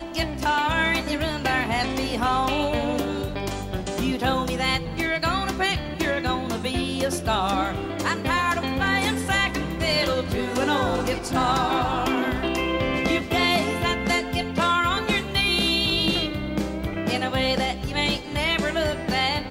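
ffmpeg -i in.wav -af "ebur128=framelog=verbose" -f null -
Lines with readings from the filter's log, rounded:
Integrated loudness:
  I:         -23.5 LUFS
  Threshold: -33.5 LUFS
Loudness range:
  LRA:         2.8 LU
  Threshold: -43.5 LUFS
  LRA low:   -24.9 LUFS
  LRA high:  -22.1 LUFS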